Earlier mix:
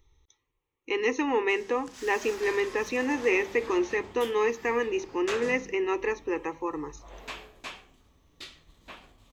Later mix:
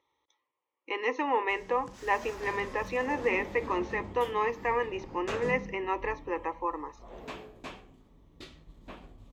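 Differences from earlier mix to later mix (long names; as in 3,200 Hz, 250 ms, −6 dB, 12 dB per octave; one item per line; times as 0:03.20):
speech: add loudspeaker in its box 390–4,400 Hz, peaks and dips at 410 Hz −7 dB, 590 Hz +7 dB, 1,000 Hz +5 dB, 1,500 Hz −5 dB, 2,600 Hz −5 dB, 3,900 Hz −6 dB
background: add tilt shelving filter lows +8 dB, about 820 Hz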